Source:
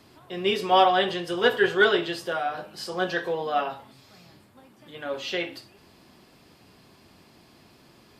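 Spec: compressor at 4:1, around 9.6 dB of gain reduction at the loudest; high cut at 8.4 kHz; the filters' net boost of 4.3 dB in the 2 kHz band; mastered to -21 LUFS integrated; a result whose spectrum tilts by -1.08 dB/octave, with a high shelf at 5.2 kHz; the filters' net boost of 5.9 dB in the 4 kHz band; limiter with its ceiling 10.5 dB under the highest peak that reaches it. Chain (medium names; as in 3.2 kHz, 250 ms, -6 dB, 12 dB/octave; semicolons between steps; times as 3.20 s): low-pass 8.4 kHz; peaking EQ 2 kHz +5.5 dB; peaking EQ 4 kHz +9 dB; treble shelf 5.2 kHz -8.5 dB; compression 4:1, threshold -23 dBFS; trim +11 dB; peak limiter -11 dBFS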